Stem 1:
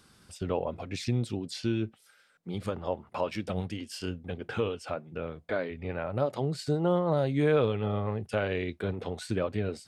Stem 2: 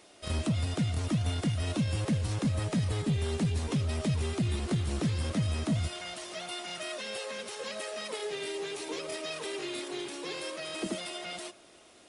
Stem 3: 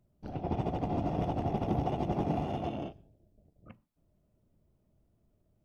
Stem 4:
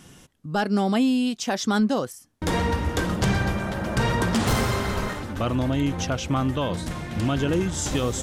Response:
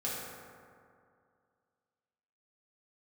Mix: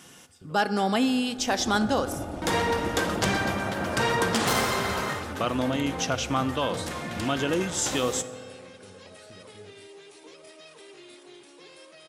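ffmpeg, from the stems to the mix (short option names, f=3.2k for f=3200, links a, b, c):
-filter_complex "[0:a]acompressor=threshold=-38dB:ratio=6,volume=-13.5dB,asplit=2[a][b];[b]volume=-6.5dB[c];[1:a]adelay=1350,volume=-11.5dB[d];[2:a]aecho=1:1:3.3:0.65,adelay=1150,volume=-5dB[e];[3:a]highpass=f=480:p=1,volume=1dB,asplit=2[f][g];[g]volume=-15dB[h];[4:a]atrim=start_sample=2205[i];[c][h]amix=inputs=2:normalize=0[j];[j][i]afir=irnorm=-1:irlink=0[k];[a][d][e][f][k]amix=inputs=5:normalize=0"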